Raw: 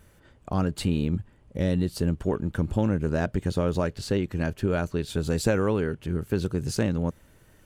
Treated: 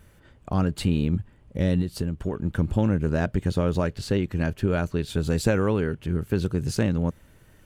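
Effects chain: tone controls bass +3 dB, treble -10 dB; 1.81–2.45 s: compression, threshold -23 dBFS, peak gain reduction 6.5 dB; treble shelf 3.7 kHz +10.5 dB

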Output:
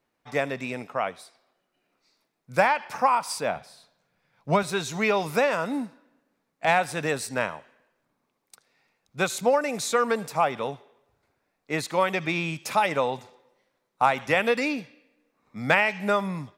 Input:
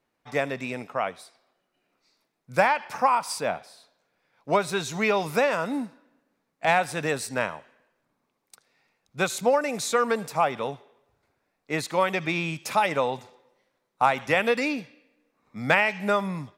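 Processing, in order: 3.56–4.63 s: resonant low shelf 220 Hz +7 dB, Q 1.5

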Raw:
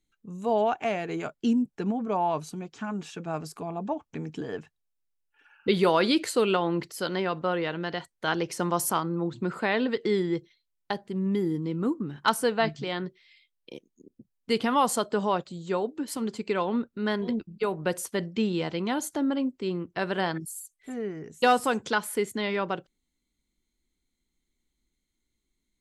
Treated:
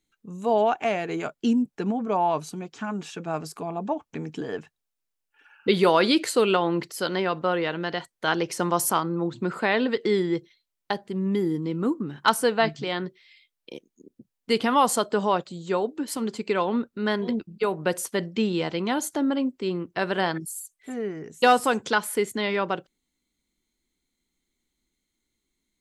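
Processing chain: bass shelf 110 Hz -8.5 dB; trim +3.5 dB

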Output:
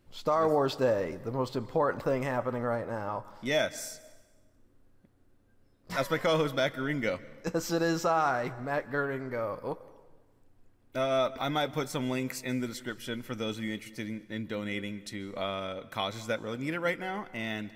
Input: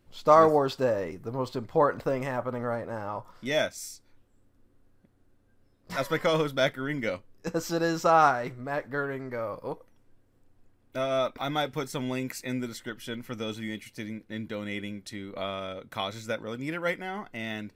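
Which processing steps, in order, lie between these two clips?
peak limiter -17.5 dBFS, peak gain reduction 10 dB; plate-style reverb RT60 1.3 s, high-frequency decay 0.85×, pre-delay 120 ms, DRR 18 dB

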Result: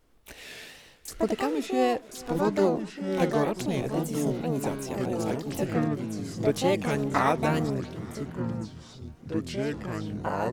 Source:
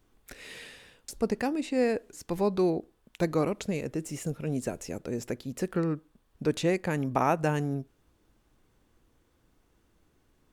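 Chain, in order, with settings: harmony voices +7 st -3 dB; wow and flutter 120 cents; ever faster or slower copies 709 ms, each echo -5 st, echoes 3, each echo -6 dB; feedback delay 407 ms, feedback 59%, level -23 dB

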